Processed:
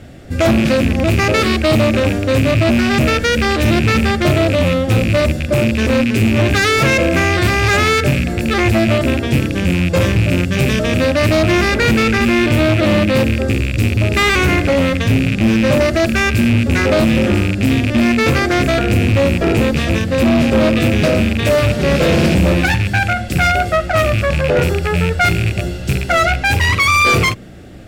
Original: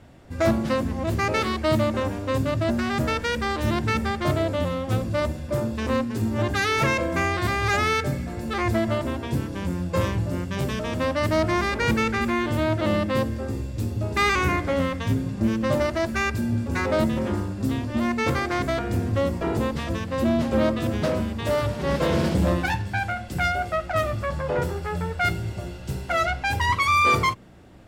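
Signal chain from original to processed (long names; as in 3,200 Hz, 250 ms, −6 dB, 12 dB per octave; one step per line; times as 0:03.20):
loose part that buzzes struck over −28 dBFS, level −22 dBFS
parametric band 980 Hz −14.5 dB 0.39 octaves
in parallel at +2 dB: brickwall limiter −18 dBFS, peak gain reduction 8 dB
on the sum: gain into a clipping stage and back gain 14 dB
level +6 dB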